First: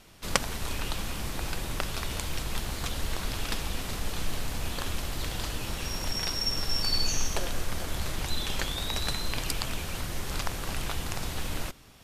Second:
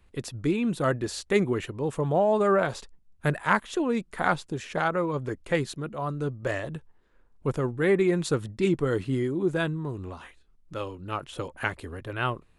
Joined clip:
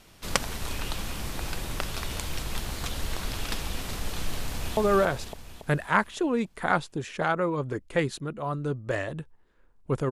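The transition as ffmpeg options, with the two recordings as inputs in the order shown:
ffmpeg -i cue0.wav -i cue1.wav -filter_complex "[0:a]apad=whole_dur=10.11,atrim=end=10.11,atrim=end=4.772[link_01];[1:a]atrim=start=2.328:end=7.67[link_02];[link_01][link_02]acrossfade=duration=0.004:curve1=hsin:curve2=hsin,asplit=2[link_03][link_04];[link_04]afade=type=in:start_time=4.48:duration=0.01,afade=type=out:start_time=4.77:duration=0.01,aecho=0:1:280|560|840|1120|1400|1680|1960|2240:0.749894|0.412442|0.226843|0.124764|0.06862|0.037741|0.0207576|0.0114167[link_05];[link_03][link_05]amix=inputs=2:normalize=0" out.wav

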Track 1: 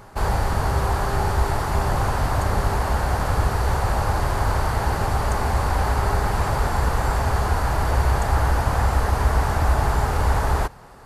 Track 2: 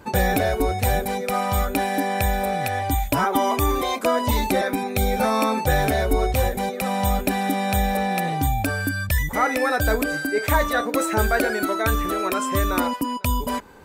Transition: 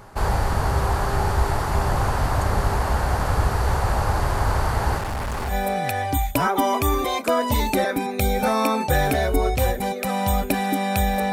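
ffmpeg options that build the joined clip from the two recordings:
ffmpeg -i cue0.wav -i cue1.wav -filter_complex "[0:a]asettb=1/sr,asplit=3[link_01][link_02][link_03];[link_01]atrim=end=4.984[link_04];[link_02]atrim=start=4.98:end=5.55,asetpts=PTS-STARTPTS,afade=type=in:duration=0.004:curve=qsin,afade=type=out:start_time=0.566:duration=0.004:curve=qsin,asoftclip=type=hard:threshold=-24.5dB[link_05];[link_03]atrim=start=5.546[link_06];[link_04][link_05]acrossfade=duration=0.004:curve1=hsin:curve2=qsin[link_07];[link_07][link_06]acrossfade=duration=0.004:curve1=qsin:curve2=hsin,apad=whole_dur=11.32,atrim=end=11.32,atrim=end=5.55,asetpts=PTS-STARTPTS[link_08];[1:a]atrim=start=2.24:end=8.09,asetpts=PTS-STARTPTS[link_09];[link_08][link_09]acrossfade=duration=0.08:curve1=tri:curve2=tri" out.wav

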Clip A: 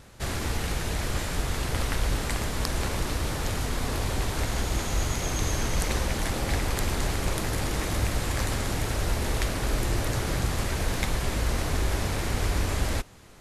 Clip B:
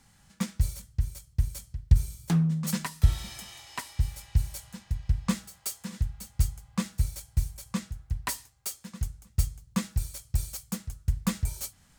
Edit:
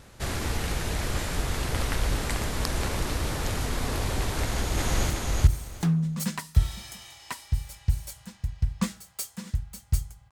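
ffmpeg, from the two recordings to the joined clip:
ffmpeg -i cue0.wav -i cue1.wav -filter_complex "[0:a]apad=whole_dur=10.31,atrim=end=10.31,atrim=end=5.102[link_01];[1:a]atrim=start=1.568:end=6.78[link_02];[link_01][link_02]acrossfade=duration=0.004:curve1=hsin:curve2=hsin,asplit=2[link_03][link_04];[link_04]afade=type=in:start_time=4.4:duration=0.01,afade=type=out:start_time=5.1:duration=0.01,aecho=0:1:370|740|1110:0.841395|0.168279|0.0336558[link_05];[link_03][link_05]amix=inputs=2:normalize=0" out.wav

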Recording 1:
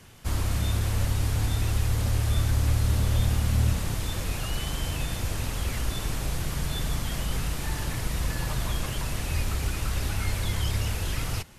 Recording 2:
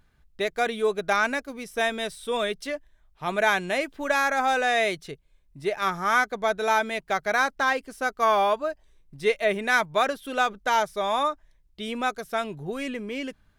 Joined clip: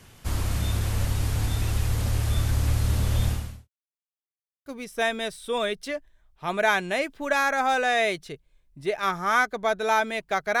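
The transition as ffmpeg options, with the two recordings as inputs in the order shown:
ffmpeg -i cue0.wav -i cue1.wav -filter_complex "[0:a]apad=whole_dur=10.6,atrim=end=10.6,asplit=2[link_01][link_02];[link_01]atrim=end=3.69,asetpts=PTS-STARTPTS,afade=type=out:start_time=3.28:duration=0.41:curve=qua[link_03];[link_02]atrim=start=3.69:end=4.66,asetpts=PTS-STARTPTS,volume=0[link_04];[1:a]atrim=start=1.45:end=7.39,asetpts=PTS-STARTPTS,afade=type=in:duration=0.004:curve=hsin[link_05];[link_03][link_04][link_05]concat=n=3:v=0:a=1" out.wav

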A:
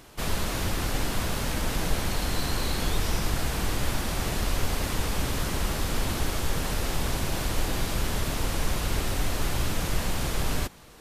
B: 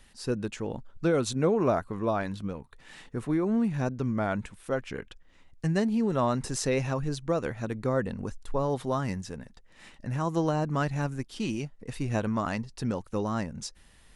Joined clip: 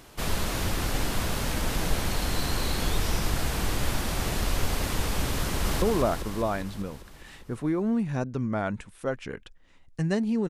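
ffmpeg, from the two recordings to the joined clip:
ffmpeg -i cue0.wav -i cue1.wav -filter_complex "[0:a]apad=whole_dur=10.49,atrim=end=10.49,atrim=end=5.822[link_01];[1:a]atrim=start=1.468:end=6.14[link_02];[link_01][link_02]acrossfade=duration=0.004:curve1=hsin:curve2=hsin,asplit=2[link_03][link_04];[link_04]afade=type=in:start_time=5.45:duration=0.01,afade=type=out:start_time=5.82:duration=0.01,aecho=0:1:200|400|600|800|1000|1200|1400|1600|1800|2000|2200|2400:0.595662|0.416964|0.291874|0.204312|0.143018|0.100113|0.0700791|0.0490553|0.0343387|0.0240371|0.016826|0.0117782[link_05];[link_03][link_05]amix=inputs=2:normalize=0" out.wav

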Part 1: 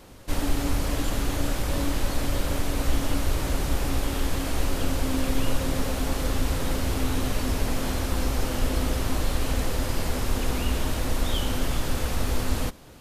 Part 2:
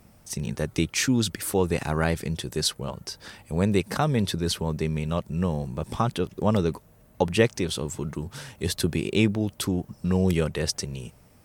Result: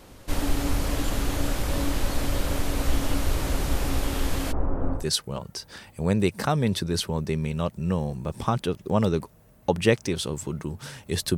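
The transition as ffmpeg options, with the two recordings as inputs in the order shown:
ffmpeg -i cue0.wav -i cue1.wav -filter_complex "[0:a]asplit=3[link_01][link_02][link_03];[link_01]afade=type=out:start_time=4.51:duration=0.02[link_04];[link_02]lowpass=frequency=1200:width=0.5412,lowpass=frequency=1200:width=1.3066,afade=type=in:start_time=4.51:duration=0.02,afade=type=out:start_time=5.07:duration=0.02[link_05];[link_03]afade=type=in:start_time=5.07:duration=0.02[link_06];[link_04][link_05][link_06]amix=inputs=3:normalize=0,apad=whole_dur=11.37,atrim=end=11.37,atrim=end=5.07,asetpts=PTS-STARTPTS[link_07];[1:a]atrim=start=2.43:end=8.89,asetpts=PTS-STARTPTS[link_08];[link_07][link_08]acrossfade=duration=0.16:curve1=tri:curve2=tri" out.wav

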